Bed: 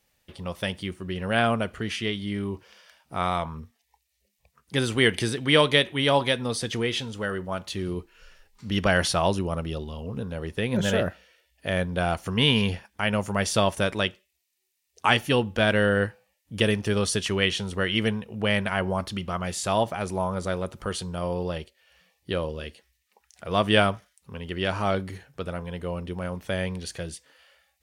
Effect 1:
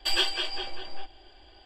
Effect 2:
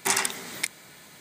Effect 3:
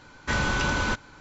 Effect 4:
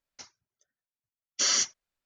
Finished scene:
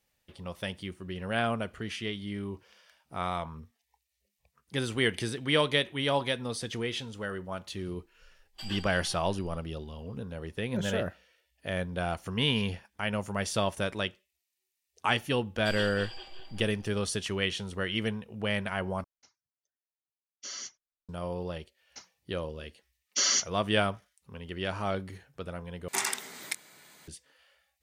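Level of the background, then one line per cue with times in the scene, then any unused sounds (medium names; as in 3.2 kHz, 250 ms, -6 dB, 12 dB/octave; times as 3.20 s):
bed -6.5 dB
8.53 s: add 1 -15.5 dB, fades 0.05 s
15.60 s: add 1 -12.5 dB + backward echo that repeats 114 ms, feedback 46%, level -9 dB
19.04 s: replace with 4 -15.5 dB
21.77 s: add 4 -1 dB + high-pass 110 Hz
25.88 s: replace with 2 -6 dB + bass shelf 220 Hz -7.5 dB
not used: 3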